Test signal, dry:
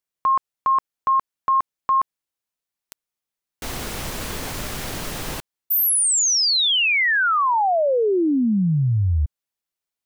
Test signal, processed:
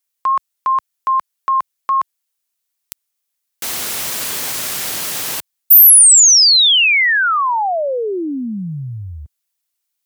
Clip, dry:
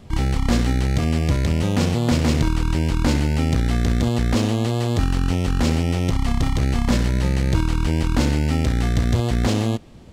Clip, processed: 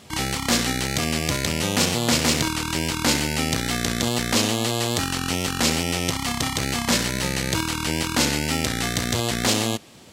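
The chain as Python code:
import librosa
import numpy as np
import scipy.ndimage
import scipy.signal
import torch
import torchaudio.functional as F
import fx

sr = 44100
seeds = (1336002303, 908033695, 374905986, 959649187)

y = scipy.signal.sosfilt(scipy.signal.butter(2, 79.0, 'highpass', fs=sr, output='sos'), x)
y = fx.tilt_eq(y, sr, slope=3.0)
y = fx.wow_flutter(y, sr, seeds[0], rate_hz=2.1, depth_cents=23.0)
y = y * 10.0 ** (2.5 / 20.0)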